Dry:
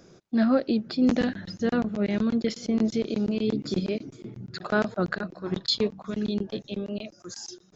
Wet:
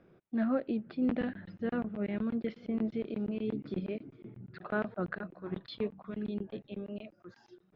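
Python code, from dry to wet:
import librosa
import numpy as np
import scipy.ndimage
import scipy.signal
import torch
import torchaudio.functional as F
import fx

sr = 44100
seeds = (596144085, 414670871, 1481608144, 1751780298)

y = scipy.signal.sosfilt(scipy.signal.butter(4, 2800.0, 'lowpass', fs=sr, output='sos'), x)
y = y * librosa.db_to_amplitude(-8.5)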